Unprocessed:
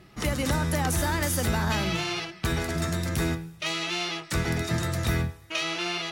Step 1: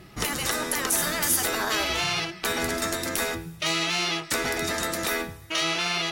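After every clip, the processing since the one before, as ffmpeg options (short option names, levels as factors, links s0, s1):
-af "afftfilt=real='re*lt(hypot(re,im),0.158)':imag='im*lt(hypot(re,im),0.158)':win_size=1024:overlap=0.75,highshelf=f=9400:g=6,volume=1.68"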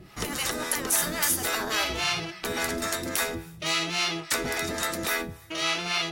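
-filter_complex "[0:a]acrossover=split=590[s0][s1];[s0]aeval=exprs='val(0)*(1-0.7/2+0.7/2*cos(2*PI*3.6*n/s))':c=same[s2];[s1]aeval=exprs='val(0)*(1-0.7/2-0.7/2*cos(2*PI*3.6*n/s))':c=same[s3];[s2][s3]amix=inputs=2:normalize=0,volume=1.19"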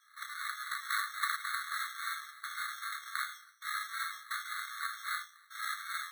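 -af "afreqshift=33,acrusher=samples=15:mix=1:aa=0.000001,afftfilt=real='re*eq(mod(floor(b*sr/1024/1100),2),1)':imag='im*eq(mod(floor(b*sr/1024/1100),2),1)':win_size=1024:overlap=0.75,volume=0.562"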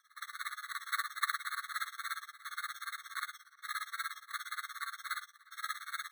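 -filter_complex "[0:a]flanger=delay=6.2:depth=2.7:regen=-68:speed=0.63:shape=sinusoidal,tremolo=f=17:d=0.94,asplit=2[s0][s1];[s1]adelay=360,highpass=300,lowpass=3400,asoftclip=type=hard:threshold=0.0237,volume=0.0631[s2];[s0][s2]amix=inputs=2:normalize=0,volume=2"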